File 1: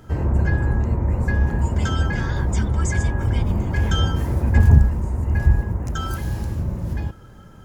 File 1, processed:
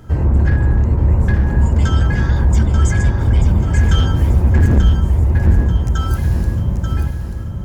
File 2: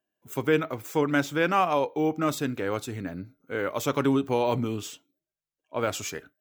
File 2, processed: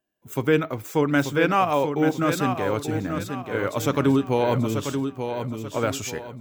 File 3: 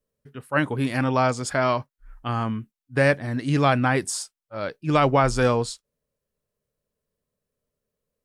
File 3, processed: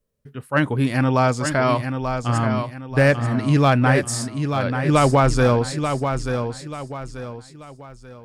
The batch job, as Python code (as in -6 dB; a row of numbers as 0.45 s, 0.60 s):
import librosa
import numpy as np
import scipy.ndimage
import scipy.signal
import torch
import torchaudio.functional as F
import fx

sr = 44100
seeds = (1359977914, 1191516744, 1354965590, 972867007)

p1 = fx.low_shelf(x, sr, hz=170.0, db=6.5)
p2 = np.clip(p1, -10.0 ** (-10.0 / 20.0), 10.0 ** (-10.0 / 20.0))
p3 = p2 + fx.echo_feedback(p2, sr, ms=886, feedback_pct=36, wet_db=-7.0, dry=0)
y = F.gain(torch.from_numpy(p3), 2.0).numpy()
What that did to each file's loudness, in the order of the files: +6.0 LU, +3.5 LU, +3.5 LU